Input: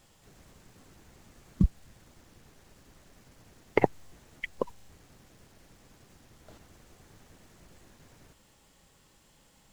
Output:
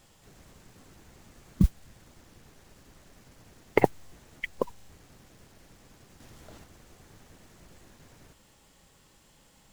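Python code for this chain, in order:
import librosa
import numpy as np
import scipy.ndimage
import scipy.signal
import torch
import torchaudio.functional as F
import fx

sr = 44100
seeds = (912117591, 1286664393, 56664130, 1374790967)

y = fx.mod_noise(x, sr, seeds[0], snr_db=29)
y = fx.env_flatten(y, sr, amount_pct=50, at=(6.2, 6.64))
y = F.gain(torch.from_numpy(y), 2.0).numpy()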